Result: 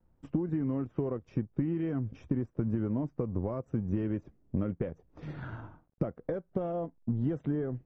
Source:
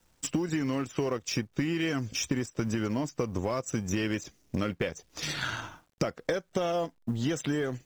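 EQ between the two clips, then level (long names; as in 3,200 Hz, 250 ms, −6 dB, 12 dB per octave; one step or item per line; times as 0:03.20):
low-pass filter 1,100 Hz 12 dB per octave
low-shelf EQ 420 Hz +10.5 dB
−8.5 dB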